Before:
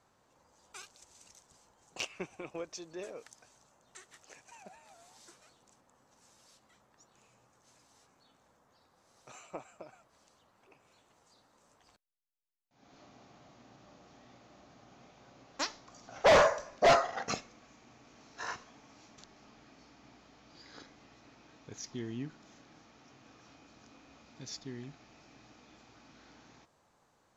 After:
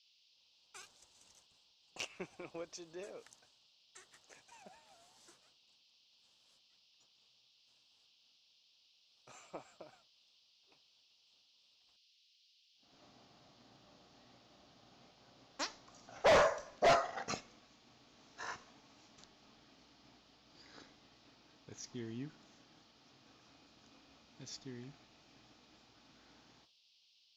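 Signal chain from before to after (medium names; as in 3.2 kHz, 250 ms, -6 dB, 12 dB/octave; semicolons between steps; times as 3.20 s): expander -56 dBFS; band noise 2.7–5.4 kHz -66 dBFS; trim -5 dB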